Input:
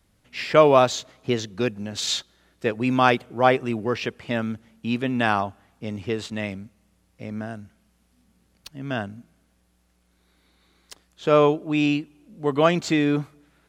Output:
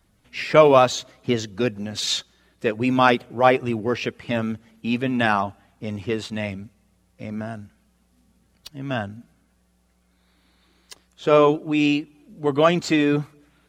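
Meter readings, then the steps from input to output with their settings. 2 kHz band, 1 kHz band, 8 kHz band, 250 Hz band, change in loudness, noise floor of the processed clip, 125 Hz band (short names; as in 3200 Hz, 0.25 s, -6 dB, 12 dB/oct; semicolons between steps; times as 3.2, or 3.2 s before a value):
+1.5 dB, +1.5 dB, +0.5 dB, +1.5 dB, +1.5 dB, -64 dBFS, +0.5 dB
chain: bin magnitudes rounded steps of 15 dB; gain +2 dB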